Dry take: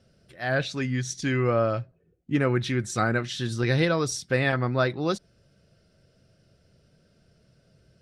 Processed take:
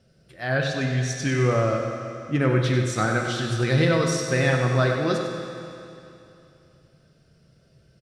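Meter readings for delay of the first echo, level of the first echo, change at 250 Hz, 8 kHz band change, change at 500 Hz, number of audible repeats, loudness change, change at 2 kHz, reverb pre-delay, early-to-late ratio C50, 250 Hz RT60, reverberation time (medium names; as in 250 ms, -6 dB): 96 ms, -8.0 dB, +2.5 dB, +2.5 dB, +3.0 dB, 1, +3.0 dB, +2.5 dB, 12 ms, 2.5 dB, 2.8 s, 2.8 s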